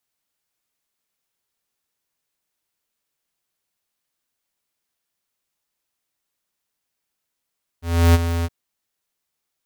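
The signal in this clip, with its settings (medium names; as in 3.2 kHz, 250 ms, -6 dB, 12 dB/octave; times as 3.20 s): ADSR square 84.5 Hz, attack 323 ms, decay 30 ms, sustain -10.5 dB, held 0.63 s, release 37 ms -11 dBFS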